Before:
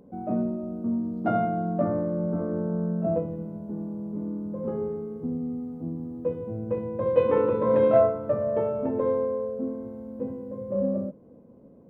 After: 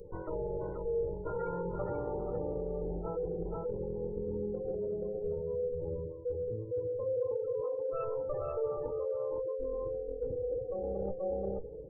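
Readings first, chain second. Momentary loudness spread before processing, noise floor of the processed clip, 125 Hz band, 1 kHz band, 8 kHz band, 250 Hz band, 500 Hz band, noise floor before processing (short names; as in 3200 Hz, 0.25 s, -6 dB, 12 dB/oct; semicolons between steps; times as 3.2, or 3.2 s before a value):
12 LU, -43 dBFS, -9.0 dB, -12.0 dB, n/a, -15.5 dB, -7.0 dB, -52 dBFS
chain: minimum comb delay 2.1 ms; limiter -20 dBFS, peak gain reduction 11 dB; bell 470 Hz +9.5 dB 0.28 oct; spectral gate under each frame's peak -20 dB strong; tone controls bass +5 dB, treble +14 dB; on a send: echo 0.481 s -5.5 dB; on the sum: reverse; compressor 6:1, threshold -36 dBFS, peak gain reduction 18.5 dB; reverse; flange 0.31 Hz, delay 2.6 ms, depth 2.8 ms, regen +77%; gain +7 dB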